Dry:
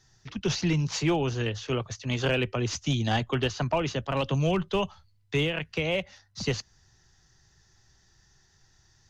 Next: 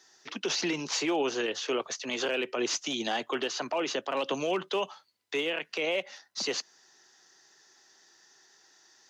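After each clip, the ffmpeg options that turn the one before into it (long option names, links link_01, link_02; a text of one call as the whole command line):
ffmpeg -i in.wav -af "highpass=frequency=300:width=0.5412,highpass=frequency=300:width=1.3066,alimiter=level_in=2dB:limit=-24dB:level=0:latency=1:release=58,volume=-2dB,volume=5dB" out.wav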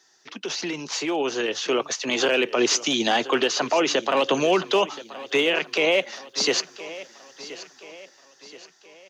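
ffmpeg -i in.wav -af "dynaudnorm=framelen=350:gausssize=9:maxgain=9.5dB,aecho=1:1:1026|2052|3078|4104:0.15|0.0688|0.0317|0.0146" out.wav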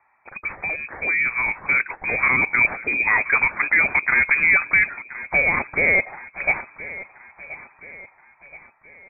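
ffmpeg -i in.wav -af "lowpass=frequency=2300:width_type=q:width=0.5098,lowpass=frequency=2300:width_type=q:width=0.6013,lowpass=frequency=2300:width_type=q:width=0.9,lowpass=frequency=2300:width_type=q:width=2.563,afreqshift=-2700,volume=3.5dB" out.wav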